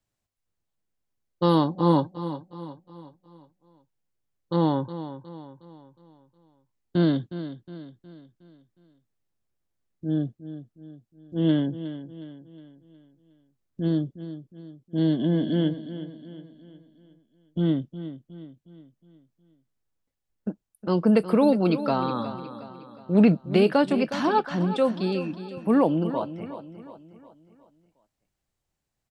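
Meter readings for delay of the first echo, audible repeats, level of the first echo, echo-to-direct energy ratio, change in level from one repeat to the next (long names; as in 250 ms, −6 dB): 363 ms, 4, −12.5 dB, −11.5 dB, −6.5 dB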